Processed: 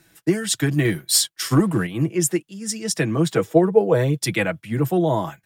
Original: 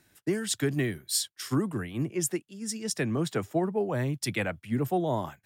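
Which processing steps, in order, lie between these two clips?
comb filter 6.1 ms, depth 58%
0:00.85–0:01.87: leveller curve on the samples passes 1
0:03.37–0:04.23: hollow resonant body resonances 460/3,500 Hz, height 11 dB → 15 dB
level +6.5 dB

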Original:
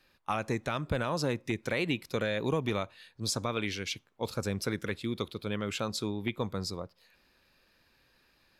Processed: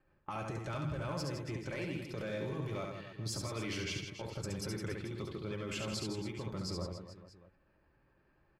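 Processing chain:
leveller curve on the samples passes 1
low-pass that shuts in the quiet parts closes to 1,300 Hz, open at −26 dBFS
low-shelf EQ 270 Hz +6 dB
notch filter 3,800 Hz, Q 8.1
downward compressor 2.5 to 1, threshold −44 dBFS, peak gain reduction 15.5 dB
mains-hum notches 50/100/150/200 Hz
output level in coarse steps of 16 dB
notch comb filter 240 Hz
on a send: reverse bouncing-ball delay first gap 70 ms, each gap 1.3×, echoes 5
on the sum: level +9 dB

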